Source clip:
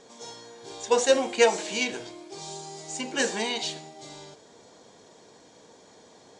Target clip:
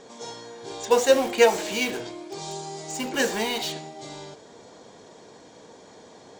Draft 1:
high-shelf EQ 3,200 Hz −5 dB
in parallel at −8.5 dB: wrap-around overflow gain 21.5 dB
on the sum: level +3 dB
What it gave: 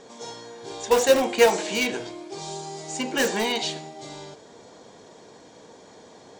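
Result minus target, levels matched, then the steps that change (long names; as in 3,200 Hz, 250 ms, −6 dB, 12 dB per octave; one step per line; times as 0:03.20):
wrap-around overflow: distortion −8 dB
change: wrap-around overflow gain 30 dB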